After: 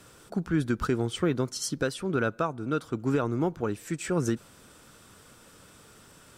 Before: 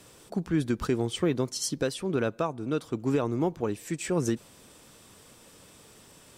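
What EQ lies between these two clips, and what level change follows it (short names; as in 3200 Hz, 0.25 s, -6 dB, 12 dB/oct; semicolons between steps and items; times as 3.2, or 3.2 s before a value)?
low shelf 200 Hz +4 dB; bell 1400 Hz +9.5 dB 0.41 oct; -1.5 dB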